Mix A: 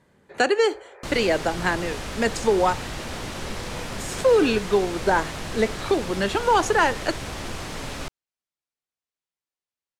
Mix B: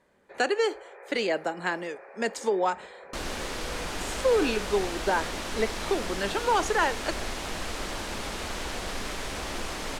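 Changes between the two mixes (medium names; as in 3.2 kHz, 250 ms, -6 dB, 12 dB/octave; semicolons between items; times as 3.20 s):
speech -5.0 dB; second sound: entry +2.10 s; master: add peaking EQ 120 Hz -12.5 dB 1 oct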